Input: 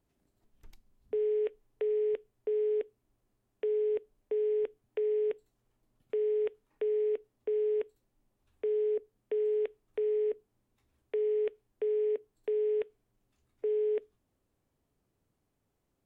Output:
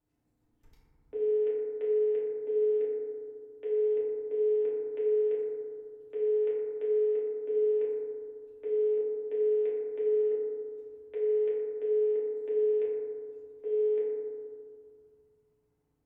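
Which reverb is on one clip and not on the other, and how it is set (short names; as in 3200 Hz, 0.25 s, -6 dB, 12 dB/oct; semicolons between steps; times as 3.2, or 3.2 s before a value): FDN reverb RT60 2.1 s, low-frequency decay 1.55×, high-frequency decay 0.25×, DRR -8 dB; gain -10.5 dB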